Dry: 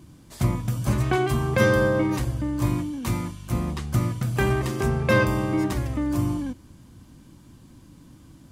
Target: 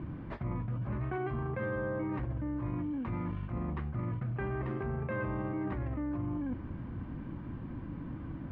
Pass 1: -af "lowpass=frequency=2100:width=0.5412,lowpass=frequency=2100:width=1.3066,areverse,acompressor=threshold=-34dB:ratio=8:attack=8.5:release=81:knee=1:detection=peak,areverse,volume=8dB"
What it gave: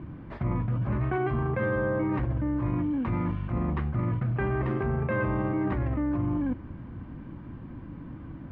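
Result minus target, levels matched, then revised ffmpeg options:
downward compressor: peak gain reduction −7.5 dB
-af "lowpass=frequency=2100:width=0.5412,lowpass=frequency=2100:width=1.3066,areverse,acompressor=threshold=-42.5dB:ratio=8:attack=8.5:release=81:knee=1:detection=peak,areverse,volume=8dB"

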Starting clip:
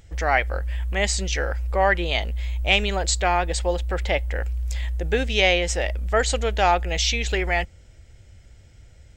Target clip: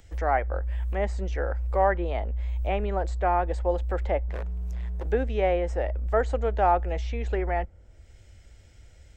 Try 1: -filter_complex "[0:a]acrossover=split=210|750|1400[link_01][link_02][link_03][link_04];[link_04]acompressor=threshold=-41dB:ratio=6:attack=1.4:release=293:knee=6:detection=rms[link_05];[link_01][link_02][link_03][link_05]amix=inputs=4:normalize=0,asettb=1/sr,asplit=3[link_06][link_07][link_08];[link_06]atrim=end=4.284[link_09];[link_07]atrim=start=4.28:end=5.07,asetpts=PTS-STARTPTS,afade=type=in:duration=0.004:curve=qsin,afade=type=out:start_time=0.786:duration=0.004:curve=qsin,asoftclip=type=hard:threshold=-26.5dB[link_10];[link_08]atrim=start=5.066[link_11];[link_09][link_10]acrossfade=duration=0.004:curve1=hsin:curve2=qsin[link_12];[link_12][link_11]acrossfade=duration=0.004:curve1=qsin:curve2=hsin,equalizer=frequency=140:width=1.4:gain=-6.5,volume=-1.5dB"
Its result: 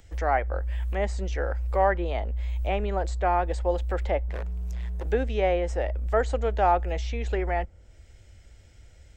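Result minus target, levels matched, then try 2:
downward compressor: peak gain reduction −6 dB
-filter_complex "[0:a]acrossover=split=210|750|1400[link_01][link_02][link_03][link_04];[link_04]acompressor=threshold=-48dB:ratio=6:attack=1.4:release=293:knee=6:detection=rms[link_05];[link_01][link_02][link_03][link_05]amix=inputs=4:normalize=0,asettb=1/sr,asplit=3[link_06][link_07][link_08];[link_06]atrim=end=4.284[link_09];[link_07]atrim=start=4.28:end=5.07,asetpts=PTS-STARTPTS,afade=type=in:duration=0.004:curve=qsin,afade=type=out:start_time=0.786:duration=0.004:curve=qsin,asoftclip=type=hard:threshold=-26.5dB[link_10];[link_08]atrim=start=5.066[link_11];[link_09][link_10]acrossfade=duration=0.004:curve1=hsin:curve2=qsin[link_12];[link_12][link_11]acrossfade=duration=0.004:curve1=qsin:curve2=hsin,equalizer=frequency=140:width=1.4:gain=-6.5,volume=-1.5dB"

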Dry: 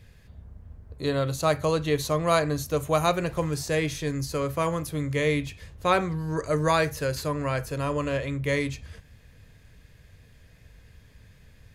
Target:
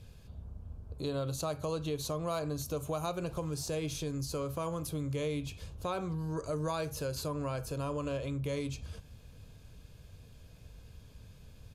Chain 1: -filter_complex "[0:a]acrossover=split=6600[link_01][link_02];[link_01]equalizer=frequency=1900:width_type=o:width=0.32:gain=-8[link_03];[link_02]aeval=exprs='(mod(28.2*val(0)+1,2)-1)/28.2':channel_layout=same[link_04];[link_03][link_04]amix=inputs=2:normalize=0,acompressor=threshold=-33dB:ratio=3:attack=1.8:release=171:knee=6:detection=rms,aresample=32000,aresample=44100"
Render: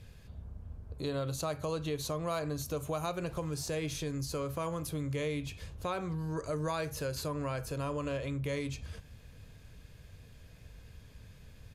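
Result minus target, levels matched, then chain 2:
2,000 Hz band +3.5 dB
-filter_complex "[0:a]acrossover=split=6600[link_01][link_02];[link_01]equalizer=frequency=1900:width_type=o:width=0.32:gain=-19.5[link_03];[link_02]aeval=exprs='(mod(28.2*val(0)+1,2)-1)/28.2':channel_layout=same[link_04];[link_03][link_04]amix=inputs=2:normalize=0,acompressor=threshold=-33dB:ratio=3:attack=1.8:release=171:knee=6:detection=rms,aresample=32000,aresample=44100"

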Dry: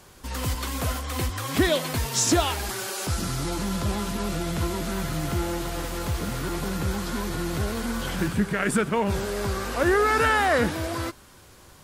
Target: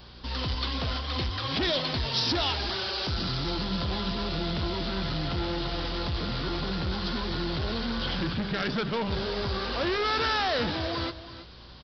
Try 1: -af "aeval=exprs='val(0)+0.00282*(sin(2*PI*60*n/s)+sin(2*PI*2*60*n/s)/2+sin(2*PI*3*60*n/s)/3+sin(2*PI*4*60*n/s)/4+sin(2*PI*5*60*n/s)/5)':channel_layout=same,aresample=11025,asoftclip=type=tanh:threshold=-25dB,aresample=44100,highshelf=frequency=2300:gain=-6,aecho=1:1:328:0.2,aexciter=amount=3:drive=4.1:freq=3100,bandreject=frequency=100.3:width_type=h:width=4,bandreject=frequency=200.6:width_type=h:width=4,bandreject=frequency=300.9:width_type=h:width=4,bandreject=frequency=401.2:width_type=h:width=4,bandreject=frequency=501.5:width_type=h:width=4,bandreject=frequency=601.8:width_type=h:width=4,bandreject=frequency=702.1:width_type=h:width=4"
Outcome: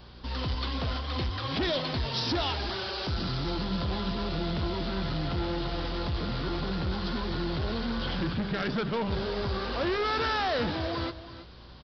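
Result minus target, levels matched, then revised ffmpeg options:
4,000 Hz band −2.5 dB
-af "aeval=exprs='val(0)+0.00282*(sin(2*PI*60*n/s)+sin(2*PI*2*60*n/s)/2+sin(2*PI*3*60*n/s)/3+sin(2*PI*4*60*n/s)/4+sin(2*PI*5*60*n/s)/5)':channel_layout=same,aresample=11025,asoftclip=type=tanh:threshold=-25dB,aresample=44100,aecho=1:1:328:0.2,aexciter=amount=3:drive=4.1:freq=3100,bandreject=frequency=100.3:width_type=h:width=4,bandreject=frequency=200.6:width_type=h:width=4,bandreject=frequency=300.9:width_type=h:width=4,bandreject=frequency=401.2:width_type=h:width=4,bandreject=frequency=501.5:width_type=h:width=4,bandreject=frequency=601.8:width_type=h:width=4,bandreject=frequency=702.1:width_type=h:width=4"

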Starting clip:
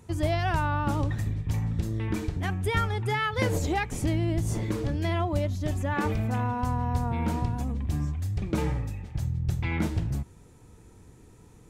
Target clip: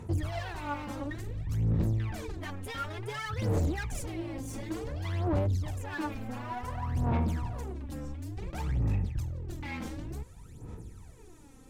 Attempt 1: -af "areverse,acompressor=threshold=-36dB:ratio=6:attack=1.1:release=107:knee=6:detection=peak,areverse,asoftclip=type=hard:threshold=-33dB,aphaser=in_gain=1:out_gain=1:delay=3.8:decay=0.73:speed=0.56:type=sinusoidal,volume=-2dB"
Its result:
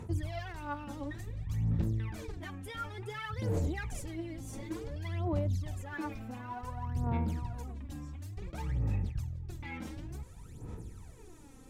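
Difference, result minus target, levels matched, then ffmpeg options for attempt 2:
downward compressor: peak gain reduction +6 dB
-af "areverse,acompressor=threshold=-28.5dB:ratio=6:attack=1.1:release=107:knee=6:detection=peak,areverse,asoftclip=type=hard:threshold=-33dB,aphaser=in_gain=1:out_gain=1:delay=3.8:decay=0.73:speed=0.56:type=sinusoidal,volume=-2dB"

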